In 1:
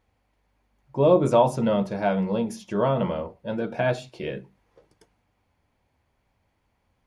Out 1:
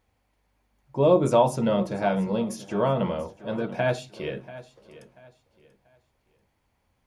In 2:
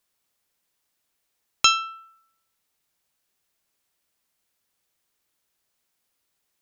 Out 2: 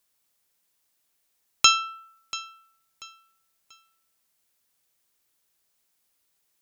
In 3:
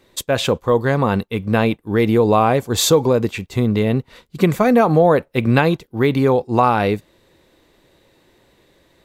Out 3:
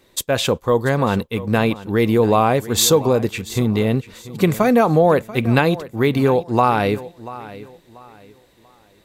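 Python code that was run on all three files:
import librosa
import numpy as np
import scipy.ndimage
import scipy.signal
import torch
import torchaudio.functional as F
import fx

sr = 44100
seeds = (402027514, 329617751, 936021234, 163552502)

p1 = fx.high_shelf(x, sr, hz=5300.0, db=5.5)
p2 = p1 + fx.echo_feedback(p1, sr, ms=687, feedback_pct=30, wet_db=-17, dry=0)
y = p2 * 10.0 ** (-1.0 / 20.0)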